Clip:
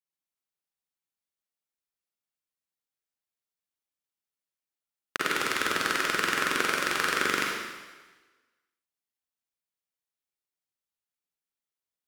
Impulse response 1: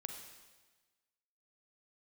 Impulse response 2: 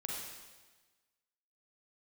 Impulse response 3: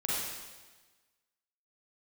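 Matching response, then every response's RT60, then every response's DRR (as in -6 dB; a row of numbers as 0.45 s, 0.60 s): 2; 1.3 s, 1.3 s, 1.3 s; 4.0 dB, -3.0 dB, -7.0 dB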